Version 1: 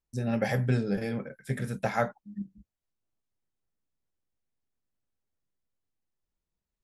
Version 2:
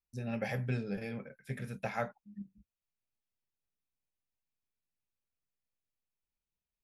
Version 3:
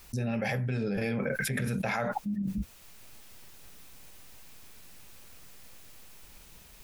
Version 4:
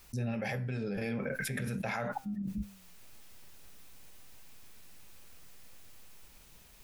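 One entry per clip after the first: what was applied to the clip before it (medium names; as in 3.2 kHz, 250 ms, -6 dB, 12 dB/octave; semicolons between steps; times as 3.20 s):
graphic EQ with 31 bands 315 Hz -4 dB, 2.5 kHz +8 dB, 8 kHz -7 dB; trim -8 dB
level flattener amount 100%
flange 0.46 Hz, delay 7.3 ms, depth 5.7 ms, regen +89%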